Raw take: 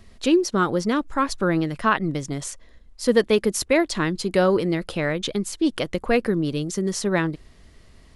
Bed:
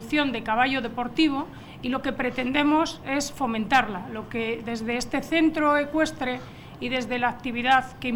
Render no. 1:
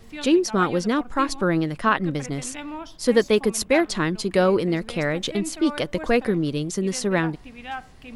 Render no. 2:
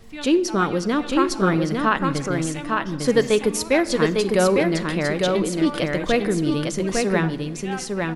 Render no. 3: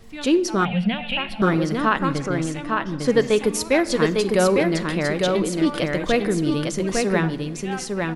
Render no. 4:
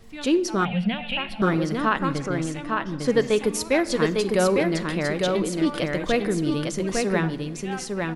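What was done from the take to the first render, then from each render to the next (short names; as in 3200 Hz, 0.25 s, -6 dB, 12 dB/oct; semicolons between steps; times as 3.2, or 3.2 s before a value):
add bed -13.5 dB
echo 0.853 s -3.5 dB; shoebox room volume 1300 m³, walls mixed, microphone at 0.34 m
0.65–1.42 EQ curve 140 Hz 0 dB, 200 Hz +10 dB, 320 Hz -26 dB, 730 Hz +4 dB, 1200 Hz -16 dB, 1800 Hz 0 dB, 2800 Hz +12 dB, 6400 Hz -28 dB, 9700 Hz -13 dB; 2.13–3.36 high shelf 6500 Hz -8 dB
gain -2.5 dB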